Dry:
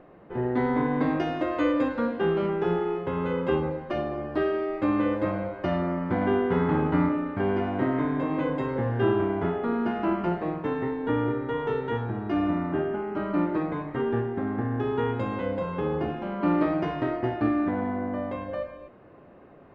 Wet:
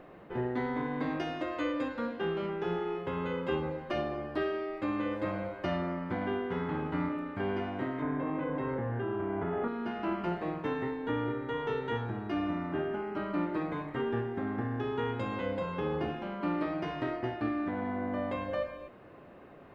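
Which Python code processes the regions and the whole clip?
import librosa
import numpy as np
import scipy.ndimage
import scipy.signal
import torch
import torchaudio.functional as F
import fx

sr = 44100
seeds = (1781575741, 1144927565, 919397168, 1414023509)

y = fx.chain(x, sr, fx.lowpass(hz=1900.0, slope=12),
    fx.env_flatten(amount_pct=100), at=(8.02, 9.68))
y = fx.high_shelf(y, sr, hz=2100.0, db=9.0)
y = fx.rider(y, sr, range_db=10, speed_s=0.5)
y = y * 10.0 ** (-8.5 / 20.0)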